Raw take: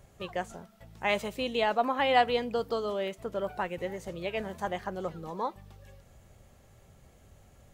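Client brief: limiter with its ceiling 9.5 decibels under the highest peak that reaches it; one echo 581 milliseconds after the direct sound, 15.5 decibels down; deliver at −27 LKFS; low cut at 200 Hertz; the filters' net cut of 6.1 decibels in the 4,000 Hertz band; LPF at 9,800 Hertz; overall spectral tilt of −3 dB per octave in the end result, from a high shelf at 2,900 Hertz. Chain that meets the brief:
high-pass filter 200 Hz
low-pass filter 9,800 Hz
high-shelf EQ 2,900 Hz −7 dB
parametric band 4,000 Hz −3.5 dB
brickwall limiter −21.5 dBFS
single-tap delay 581 ms −15.5 dB
level +7.5 dB

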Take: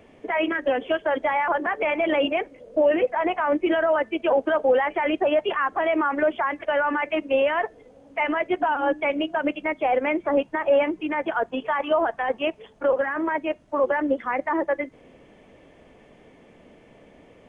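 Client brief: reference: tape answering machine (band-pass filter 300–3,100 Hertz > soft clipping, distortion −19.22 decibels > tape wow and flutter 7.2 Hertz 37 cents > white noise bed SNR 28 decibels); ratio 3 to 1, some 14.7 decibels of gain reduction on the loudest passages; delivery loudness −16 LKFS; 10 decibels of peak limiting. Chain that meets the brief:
downward compressor 3 to 1, threshold −37 dBFS
brickwall limiter −33 dBFS
band-pass filter 300–3,100 Hz
soft clipping −35.5 dBFS
tape wow and flutter 7.2 Hz 37 cents
white noise bed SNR 28 dB
level +28 dB

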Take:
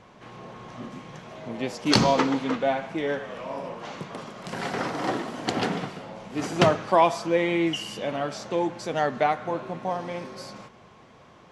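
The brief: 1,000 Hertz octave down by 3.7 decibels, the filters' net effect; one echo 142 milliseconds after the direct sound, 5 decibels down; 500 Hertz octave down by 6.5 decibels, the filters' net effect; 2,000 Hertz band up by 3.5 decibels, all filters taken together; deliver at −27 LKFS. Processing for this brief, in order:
parametric band 500 Hz −8 dB
parametric band 1,000 Hz −3 dB
parametric band 2,000 Hz +5.5 dB
single-tap delay 142 ms −5 dB
level +0.5 dB

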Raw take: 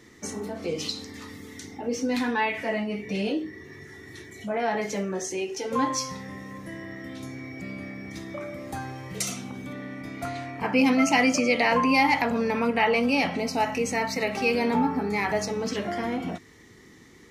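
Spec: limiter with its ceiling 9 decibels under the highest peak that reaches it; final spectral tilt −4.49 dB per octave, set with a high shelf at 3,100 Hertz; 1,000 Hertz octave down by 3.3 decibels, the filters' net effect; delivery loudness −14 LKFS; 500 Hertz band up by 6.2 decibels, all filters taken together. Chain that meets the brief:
parametric band 500 Hz +9 dB
parametric band 1,000 Hz −8 dB
high-shelf EQ 3,100 Hz −4 dB
level +13 dB
brickwall limiter −2.5 dBFS

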